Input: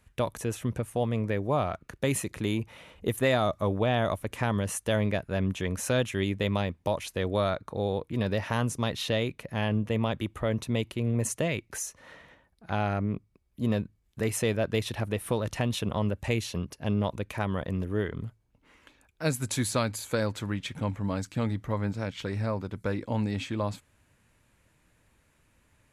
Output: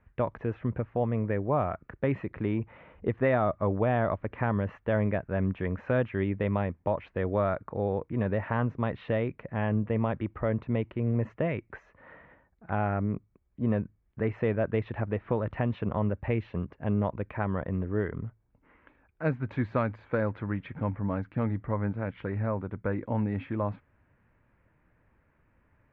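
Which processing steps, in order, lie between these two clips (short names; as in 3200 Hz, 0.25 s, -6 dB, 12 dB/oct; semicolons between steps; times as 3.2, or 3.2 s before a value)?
inverse Chebyshev low-pass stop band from 10000 Hz, stop band 80 dB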